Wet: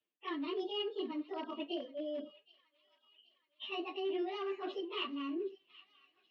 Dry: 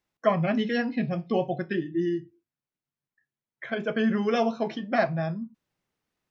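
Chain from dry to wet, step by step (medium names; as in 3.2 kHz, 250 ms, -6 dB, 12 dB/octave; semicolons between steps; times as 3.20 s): frequency-domain pitch shifter +9.5 st; tilt EQ -1.5 dB/octave; reverse; compression 5:1, threshold -42 dBFS, peak gain reduction 20 dB; reverse; one-sided clip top -37 dBFS, bottom -35 dBFS; cabinet simulation 300–4200 Hz, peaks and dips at 340 Hz +5 dB, 530 Hz -5 dB, 860 Hz -8 dB, 1.4 kHz -9 dB, 2.9 kHz +10 dB; on a send: feedback echo behind a high-pass 772 ms, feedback 56%, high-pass 1.8 kHz, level -18 dB; on the sum: trim +5 dB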